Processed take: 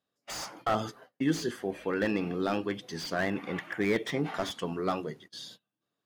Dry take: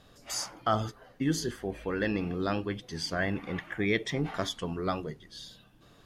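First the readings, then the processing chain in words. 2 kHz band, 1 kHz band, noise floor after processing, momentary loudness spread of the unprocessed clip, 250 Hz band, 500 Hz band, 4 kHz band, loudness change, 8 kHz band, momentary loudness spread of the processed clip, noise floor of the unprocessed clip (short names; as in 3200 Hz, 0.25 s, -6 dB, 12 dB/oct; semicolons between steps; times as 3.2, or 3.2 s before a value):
-0.5 dB, +0.5 dB, under -85 dBFS, 9 LU, +0.5 dB, +1.5 dB, -2.0 dB, 0.0 dB, -4.5 dB, 11 LU, -58 dBFS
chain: HPF 180 Hz 12 dB/oct; gate -51 dBFS, range -28 dB; slew limiter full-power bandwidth 56 Hz; gain +2 dB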